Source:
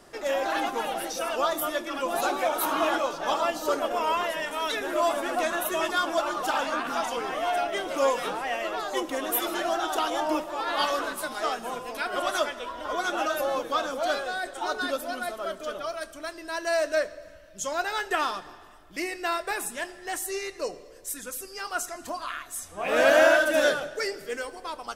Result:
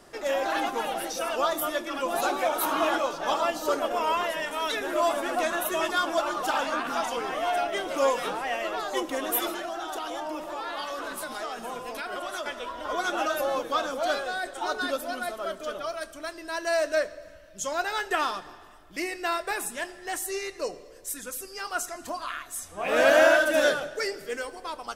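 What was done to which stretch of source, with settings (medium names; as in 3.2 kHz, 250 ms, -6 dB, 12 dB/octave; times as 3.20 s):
9.51–12.46 s: compression, threshold -30 dBFS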